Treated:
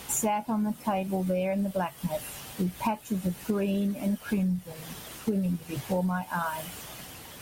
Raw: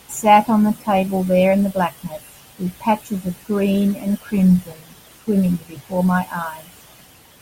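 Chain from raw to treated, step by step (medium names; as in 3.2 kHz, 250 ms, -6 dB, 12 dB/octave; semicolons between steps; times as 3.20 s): compression 16:1, threshold -28 dBFS, peak gain reduction 22 dB; trim +3 dB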